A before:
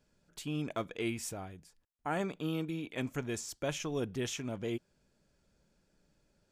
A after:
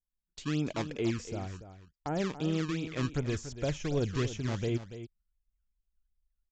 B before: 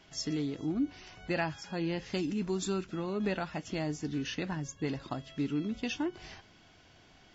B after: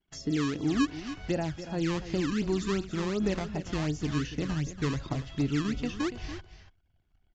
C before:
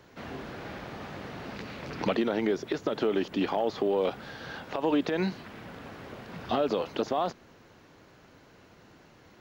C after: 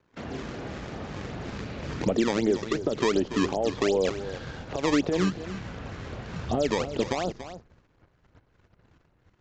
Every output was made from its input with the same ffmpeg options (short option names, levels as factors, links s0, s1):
-filter_complex "[0:a]anlmdn=0.000398,agate=range=0.158:threshold=0.002:ratio=16:detection=peak,asubboost=boost=4:cutoff=110,acrossover=split=660[s0][s1];[s0]acrusher=samples=18:mix=1:aa=0.000001:lfo=1:lforange=28.8:lforate=2.7[s2];[s1]acompressor=threshold=0.00355:ratio=6[s3];[s2][s3]amix=inputs=2:normalize=0,aecho=1:1:286:0.251,aresample=16000,aresample=44100,volume=1.88"